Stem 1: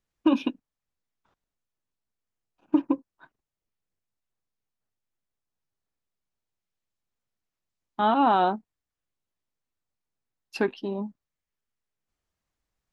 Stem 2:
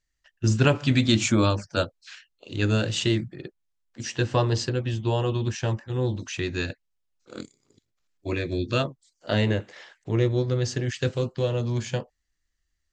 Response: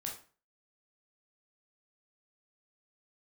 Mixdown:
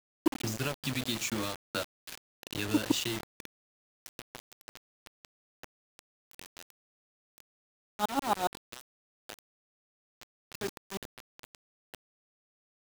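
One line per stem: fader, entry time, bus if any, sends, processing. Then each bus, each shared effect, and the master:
-2.0 dB, 0.00 s, no send, peaking EQ 3.8 kHz +7.5 dB 0.26 oct; sawtooth tremolo in dB swelling 7.2 Hz, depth 29 dB
3.24 s -1 dB -> 3.59 s -12.5 dB, 0.00 s, no send, tilt shelf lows -3 dB, about 1.5 kHz; compression 5:1, threshold -30 dBFS, peak gain reduction 13 dB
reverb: none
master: high-pass 120 Hz 24 dB/octave; word length cut 6-bit, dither none

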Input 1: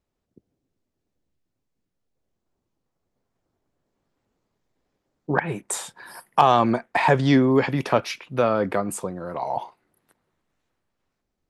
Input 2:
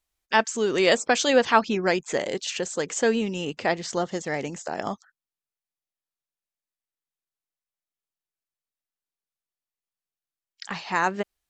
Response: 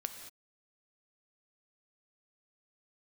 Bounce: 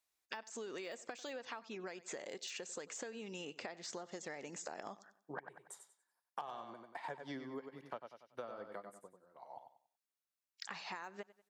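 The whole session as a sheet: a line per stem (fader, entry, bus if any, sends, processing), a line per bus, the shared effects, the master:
-7.5 dB, 0.00 s, no send, echo send -8.5 dB, band-stop 2.5 kHz, Q 7.7; upward expansion 2.5:1, over -39 dBFS
-5.5 dB, 0.00 s, no send, echo send -21.5 dB, de-esser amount 65%; band-stop 3.1 kHz, Q 15; compression, threshold -27 dBFS, peak gain reduction 13 dB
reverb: none
echo: feedback delay 94 ms, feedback 28%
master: gain riding within 5 dB 2 s; high-pass 410 Hz 6 dB/octave; compression 6:1, threshold -43 dBFS, peak gain reduction 22 dB

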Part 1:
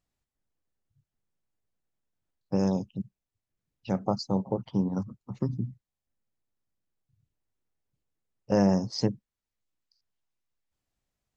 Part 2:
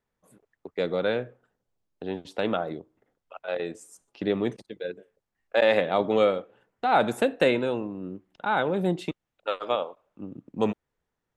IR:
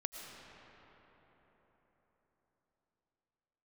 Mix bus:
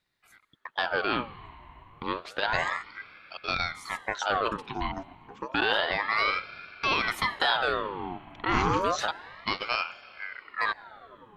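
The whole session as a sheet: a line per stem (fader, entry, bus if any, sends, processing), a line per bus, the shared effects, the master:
+0.5 dB, 0.00 s, no send, Bessel high-pass 310 Hz
+1.0 dB, 0.00 s, send -11.5 dB, peak limiter -18 dBFS, peak gain reduction 9.5 dB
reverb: on, RT60 4.5 s, pre-delay 70 ms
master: high-order bell 2.3 kHz +10 dB 1.1 oct; ring modulator with a swept carrier 1.2 kHz, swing 60%, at 0.3 Hz

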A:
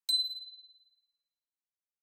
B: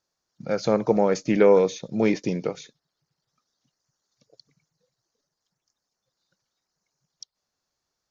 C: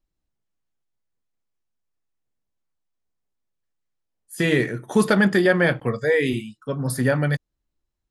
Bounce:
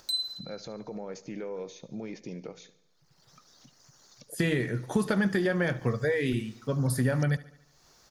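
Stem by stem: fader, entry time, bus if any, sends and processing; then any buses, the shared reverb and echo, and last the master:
-1.0 dB, 0.00 s, no send, no echo send, none
-13.0 dB, 0.00 s, no send, echo send -17.5 dB, upward compressor, threshold -20 dBFS; peak limiter -16.5 dBFS, peak gain reduction 10 dB
-3.5 dB, 0.00 s, no send, echo send -18.5 dB, compression, threshold -21 dBFS, peak gain reduction 8.5 dB; bass shelf 120 Hz +9 dB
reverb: none
echo: feedback delay 72 ms, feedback 55%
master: none

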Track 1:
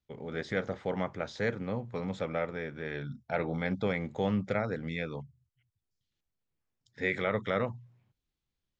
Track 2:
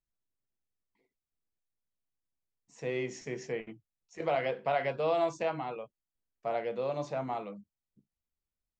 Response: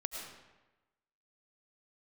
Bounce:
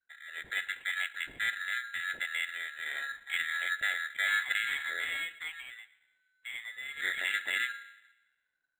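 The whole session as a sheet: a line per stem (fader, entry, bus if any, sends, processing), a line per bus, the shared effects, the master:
-6.5 dB, 0.00 s, send -14.5 dB, treble shelf 4.6 kHz -11.5 dB; level rider gain up to 7 dB
+1.5 dB, 0.00 s, send -22.5 dB, auto duck -8 dB, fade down 1.90 s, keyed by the first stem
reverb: on, RT60 1.1 s, pre-delay 65 ms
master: frequency inversion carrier 4 kHz; decimation joined by straight lines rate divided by 8×

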